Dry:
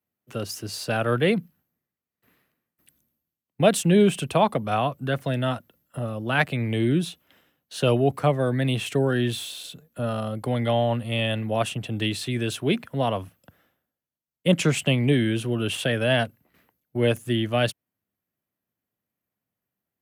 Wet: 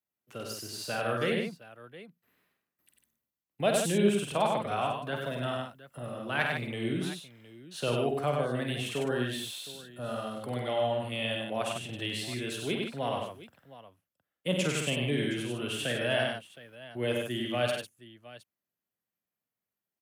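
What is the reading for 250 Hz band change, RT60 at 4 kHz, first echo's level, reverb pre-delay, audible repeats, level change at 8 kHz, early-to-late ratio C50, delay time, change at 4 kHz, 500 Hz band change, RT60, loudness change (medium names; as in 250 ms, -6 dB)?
-9.0 dB, no reverb, -6.5 dB, no reverb, 4, -4.5 dB, no reverb, 49 ms, -4.5 dB, -6.5 dB, no reverb, -7.0 dB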